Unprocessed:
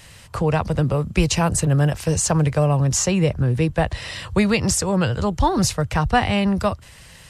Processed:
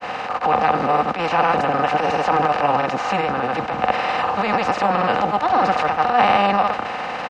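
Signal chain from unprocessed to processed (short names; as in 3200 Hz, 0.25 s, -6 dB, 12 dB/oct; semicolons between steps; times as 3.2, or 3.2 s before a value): per-bin compression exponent 0.4; weighting filter A; gate -26 dBFS, range -10 dB; comb 3.9 ms, depth 40%; transient shaper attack -12 dB, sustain +5 dB; grains, pitch spread up and down by 0 st; short-mantissa float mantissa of 4-bit; air absorption 330 m; small resonant body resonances 780/1200 Hz, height 9 dB, ringing for 20 ms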